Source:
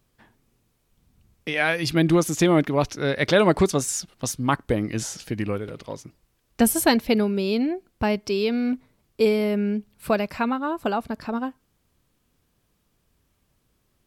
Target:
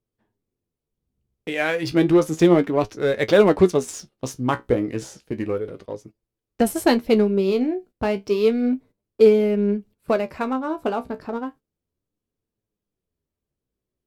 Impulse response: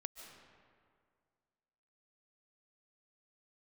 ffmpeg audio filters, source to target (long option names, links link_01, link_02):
-filter_complex "[0:a]asplit=2[link_01][link_02];[link_02]adynamicsmooth=sensitivity=7.5:basefreq=860,volume=-1.5dB[link_03];[link_01][link_03]amix=inputs=2:normalize=0,equalizer=frequency=420:width_type=o:width=1.1:gain=7,aeval=exprs='1.12*(cos(1*acos(clip(val(0)/1.12,-1,1)))-cos(1*PI/2))+0.0224*(cos(7*acos(clip(val(0)/1.12,-1,1)))-cos(7*PI/2))':channel_layout=same,flanger=delay=9.1:depth=7.2:regen=50:speed=0.32:shape=sinusoidal,agate=range=-13dB:threshold=-39dB:ratio=16:detection=peak,volume=-3dB"